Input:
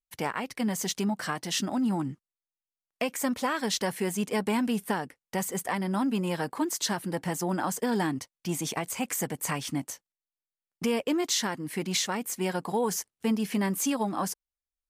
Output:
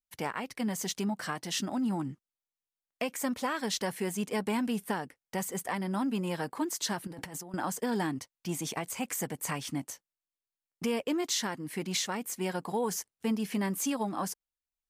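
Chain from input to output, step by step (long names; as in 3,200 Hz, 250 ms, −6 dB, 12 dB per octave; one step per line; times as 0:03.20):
0:07.07–0:07.54: compressor whose output falls as the input rises −40 dBFS, ratio −1
level −3.5 dB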